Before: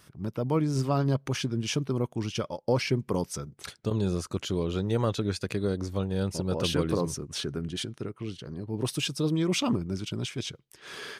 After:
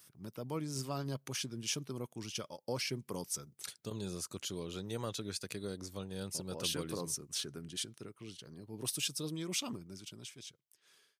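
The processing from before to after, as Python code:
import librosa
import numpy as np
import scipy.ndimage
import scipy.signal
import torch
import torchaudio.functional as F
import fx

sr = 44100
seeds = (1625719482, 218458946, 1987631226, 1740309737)

y = fx.fade_out_tail(x, sr, length_s=2.04)
y = scipy.signal.sosfilt(scipy.signal.butter(2, 100.0, 'highpass', fs=sr, output='sos'), y)
y = scipy.signal.lfilter([1.0, -0.8], [1.0], y)
y = F.gain(torch.from_numpy(y), 1.0).numpy()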